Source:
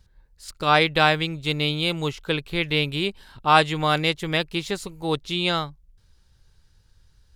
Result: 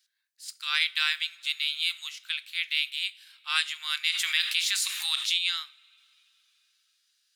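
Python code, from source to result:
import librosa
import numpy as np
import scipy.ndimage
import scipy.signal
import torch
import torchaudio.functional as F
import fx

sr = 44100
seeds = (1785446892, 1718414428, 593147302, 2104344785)

y = scipy.signal.sosfilt(scipy.signal.bessel(6, 2600.0, 'highpass', norm='mag', fs=sr, output='sos'), x)
y = fx.rev_double_slope(y, sr, seeds[0], early_s=0.33, late_s=3.7, knee_db=-22, drr_db=13.5)
y = fx.env_flatten(y, sr, amount_pct=70, at=(4.12, 5.37), fade=0.02)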